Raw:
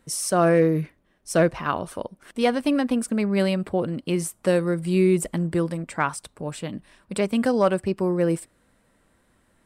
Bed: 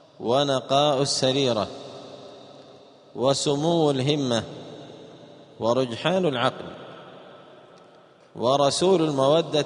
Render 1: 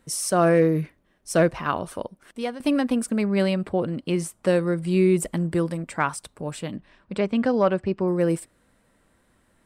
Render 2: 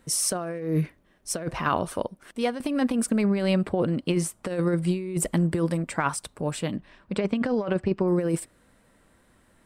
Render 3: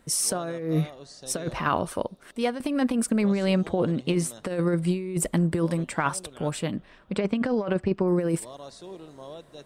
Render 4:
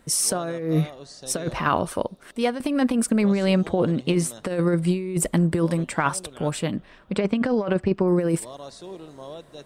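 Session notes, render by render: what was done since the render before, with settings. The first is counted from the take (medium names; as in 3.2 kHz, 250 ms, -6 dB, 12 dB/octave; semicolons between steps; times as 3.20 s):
2.02–2.60 s: fade out, to -13.5 dB; 3.30–5.16 s: treble shelf 11 kHz -11 dB; 6.76–8.08 s: distance through air 140 m
compressor with a negative ratio -23 dBFS, ratio -0.5
add bed -22.5 dB
trim +3 dB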